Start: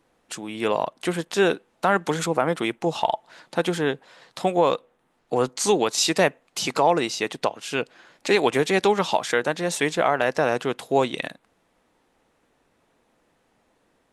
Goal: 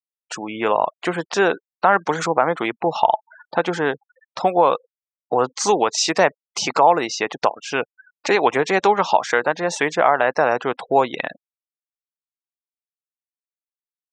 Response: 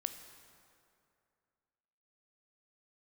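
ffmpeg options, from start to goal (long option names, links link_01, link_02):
-filter_complex "[0:a]afftfilt=real='re*gte(hypot(re,im),0.0158)':imag='im*gte(hypot(re,im),0.0158)':win_size=1024:overlap=0.75,firequalizer=gain_entry='entry(130,0);entry(840,11);entry(2100,6);entry(3400,0);entry(5800,7);entry(12000,-23)':delay=0.05:min_phase=1,asplit=2[link_01][link_02];[link_02]acompressor=threshold=-23dB:ratio=6,volume=0dB[link_03];[link_01][link_03]amix=inputs=2:normalize=0,volume=-5dB"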